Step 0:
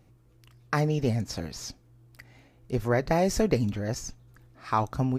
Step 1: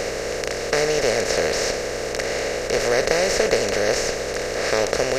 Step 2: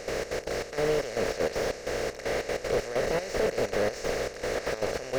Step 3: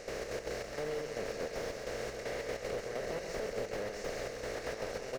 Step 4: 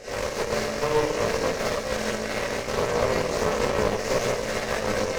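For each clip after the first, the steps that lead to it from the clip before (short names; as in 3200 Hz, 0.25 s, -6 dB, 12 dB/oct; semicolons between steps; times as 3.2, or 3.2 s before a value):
per-bin compression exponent 0.2; graphic EQ 125/250/500/1000/2000/4000/8000 Hz -9/-7/+12/-11/+10/+11/+5 dB; gain -5 dB
limiter -11 dBFS, peak gain reduction 9 dB; step gate ".xx.x.xx..xxx." 193 bpm -12 dB; slew limiter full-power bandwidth 81 Hz; gain -3 dB
compressor, threshold -27 dBFS, peak gain reduction 6 dB; on a send: loudspeakers at several distances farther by 46 m -6 dB, 71 m -10 dB; on the sum: gain -7.5 dB
Schroeder reverb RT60 0.33 s, combs from 29 ms, DRR -7 dB; chorus voices 2, 0.69 Hz, delay 18 ms, depth 1.2 ms; added harmonics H 4 -10 dB, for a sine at -19 dBFS; gain +7 dB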